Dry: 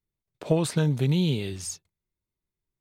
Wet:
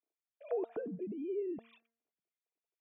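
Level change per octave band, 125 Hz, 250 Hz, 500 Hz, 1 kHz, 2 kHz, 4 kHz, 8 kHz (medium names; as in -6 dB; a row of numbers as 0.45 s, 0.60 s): -31.0 dB, -15.0 dB, -7.5 dB, -11.5 dB, -20.5 dB, under -35 dB, under -40 dB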